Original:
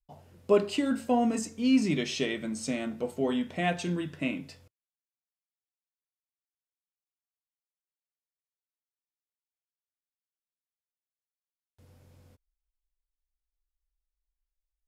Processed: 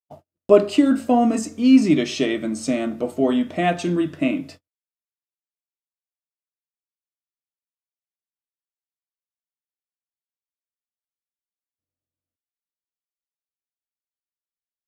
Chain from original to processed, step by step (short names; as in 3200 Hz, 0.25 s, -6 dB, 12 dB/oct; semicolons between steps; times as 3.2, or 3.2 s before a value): gate -49 dBFS, range -45 dB; small resonant body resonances 310/630/1200 Hz, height 10 dB, ringing for 35 ms; gain +5 dB